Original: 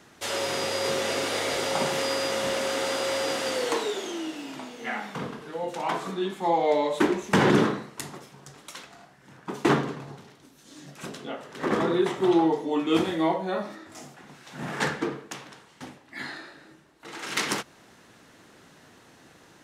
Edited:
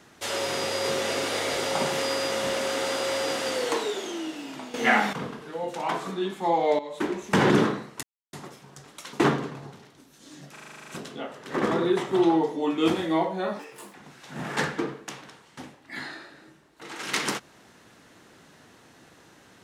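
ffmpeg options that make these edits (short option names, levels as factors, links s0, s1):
-filter_complex "[0:a]asplit=17[s0][s1][s2][s3][s4][s5][s6][s7][s8][s9][s10][s11][s12][s13][s14][s15][s16];[s0]atrim=end=4.742[s17];[s1]atrim=start=4.738:end=5.132,asetpts=PTS-STARTPTS,volume=3.76[s18];[s2]atrim=start=5.128:end=6.79,asetpts=PTS-STARTPTS,afade=t=out:st=1.658:d=0.004:c=hsin:silence=0.188365[s19];[s3]atrim=start=6.79:end=8.03,asetpts=PTS-STARTPTS,afade=t=in:d=0.63:silence=0.188365,afade=t=out:st=1.236:d=0.004:c=hsin,apad=pad_dur=0.3[s20];[s4]atrim=start=8.03:end=8.832,asetpts=PTS-STARTPTS,afade=t=in:d=0.004:c=hsin[s21];[s5]atrim=start=9.578:end=11.012[s22];[s6]atrim=start=10.968:end=11.012[s23];[s7]atrim=start=10.968:end=11.012[s24];[s8]atrim=start=10.968:end=11.012[s25];[s9]atrim=start=10.968:end=11.012[s26];[s10]atrim=start=10.968:end=11.012[s27];[s11]atrim=start=10.968:end=11.012[s28];[s12]atrim=start=10.968:end=11.012[s29];[s13]atrim=start=10.968:end=11.012[s30];[s14]atrim=start=10.968:end=13.684[s31];[s15]atrim=start=13.68:end=14.18,asetpts=PTS-STARTPTS,asetrate=61740,aresample=44100,atrim=end_sample=15750,asetpts=PTS-STARTPTS[s32];[s16]atrim=start=14.176[s33];[s17][s18]acrossfade=d=0.004:c1=hsin:c2=hsin[s34];[s19][s20][s21]concat=n=3:v=0:a=1[s35];[s34][s35]acrossfade=d=0.004:c1=hsin:c2=hsin[s36];[s36][s22]acrossfade=d=0.004:c1=hsin:c2=hsin[s37];[s37][s23]acrossfade=d=0.004:c1=hsin:c2=hsin[s38];[s38][s24]acrossfade=d=0.004:c1=hsin:c2=hsin[s39];[s39][s25]acrossfade=d=0.004:c1=hsin:c2=hsin[s40];[s40][s26]acrossfade=d=0.004:c1=hsin:c2=hsin[s41];[s41][s27]acrossfade=d=0.004:c1=hsin:c2=hsin[s42];[s42][s28]acrossfade=d=0.004:c1=hsin:c2=hsin[s43];[s43][s29]acrossfade=d=0.004:c1=hsin:c2=hsin[s44];[s44][s30]acrossfade=d=0.004:c1=hsin:c2=hsin[s45];[s45][s31]acrossfade=d=0.004:c1=hsin:c2=hsin[s46];[s46][s32]acrossfade=d=0.004:c1=hsin:c2=hsin[s47];[s47][s33]acrossfade=d=0.004:c1=hsin:c2=hsin"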